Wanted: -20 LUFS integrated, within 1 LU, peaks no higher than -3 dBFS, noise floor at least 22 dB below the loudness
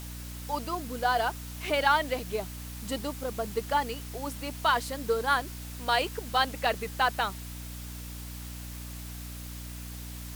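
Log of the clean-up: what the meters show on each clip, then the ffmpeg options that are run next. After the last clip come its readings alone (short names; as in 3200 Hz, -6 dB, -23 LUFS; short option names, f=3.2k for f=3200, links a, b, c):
hum 60 Hz; harmonics up to 300 Hz; hum level -39 dBFS; noise floor -40 dBFS; noise floor target -53 dBFS; loudness -31.0 LUFS; peak -10.5 dBFS; loudness target -20.0 LUFS
-> -af "bandreject=f=60:t=h:w=6,bandreject=f=120:t=h:w=6,bandreject=f=180:t=h:w=6,bandreject=f=240:t=h:w=6,bandreject=f=300:t=h:w=6"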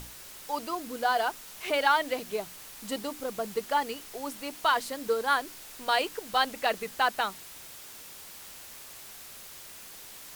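hum none; noise floor -47 dBFS; noise floor target -52 dBFS
-> -af "afftdn=nr=6:nf=-47"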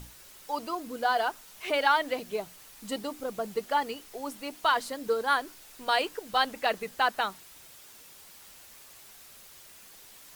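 noise floor -52 dBFS; loudness -30.0 LUFS; peak -10.5 dBFS; loudness target -20.0 LUFS
-> -af "volume=10dB,alimiter=limit=-3dB:level=0:latency=1"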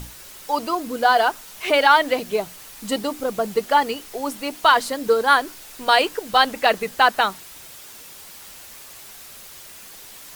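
loudness -20.0 LUFS; peak -3.0 dBFS; noise floor -42 dBFS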